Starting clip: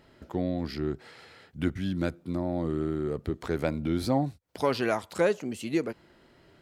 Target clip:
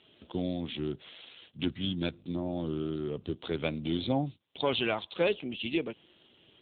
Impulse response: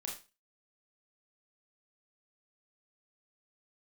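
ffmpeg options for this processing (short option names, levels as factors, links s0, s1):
-filter_complex "[0:a]aexciter=amount=10:drive=3.5:freq=2700,asettb=1/sr,asplit=3[s0][s1][s2];[s0]atrim=end=2.044[s3];[s1]atrim=start=2.04:end=3.24,asetpts=PTS-STARTPTS,afade=t=in:d=0.004:c=qsin,afade=t=out:st=1.196:d=0.004:c=qsin,aeval=exprs='val(0)+0.00355*(sin(2*PI*50*n/s)+sin(2*PI*2*50*n/s)/2+sin(2*PI*3*50*n/s)/3+sin(2*PI*4*50*n/s)/4+sin(2*PI*5*50*n/s)/5)':c=same[s4];[s2]atrim=start=3.236[s5];[s3][s4]acrossfade=d=0.004:c1=hsin:c2=qsin[s6];[s6][s5]acrossfade=d=0.004:c1=qsin:c2=hsin,volume=0.708" -ar 8000 -c:a libopencore_amrnb -b:a 7400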